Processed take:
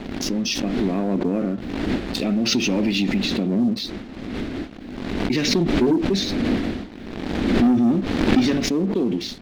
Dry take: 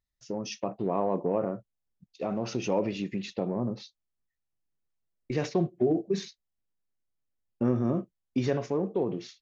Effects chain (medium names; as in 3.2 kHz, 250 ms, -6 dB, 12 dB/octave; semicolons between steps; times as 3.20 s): wind noise 540 Hz -40 dBFS; ten-band graphic EQ 125 Hz -8 dB, 250 Hz +11 dB, 500 Hz -7 dB, 1 kHz -11 dB, 2 kHz +5 dB, 4 kHz +10 dB; waveshaping leveller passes 2; swell ahead of each attack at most 35 dB/s